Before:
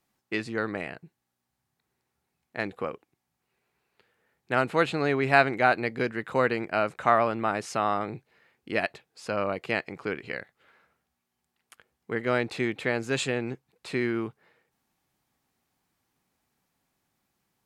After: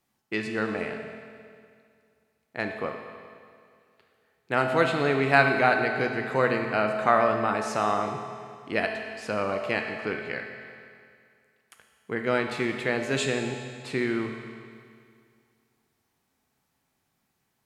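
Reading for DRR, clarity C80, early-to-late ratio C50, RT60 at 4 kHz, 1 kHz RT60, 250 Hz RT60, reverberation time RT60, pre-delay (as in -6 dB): 3.5 dB, 5.5 dB, 4.5 dB, 2.1 s, 2.2 s, 2.2 s, 2.2 s, 13 ms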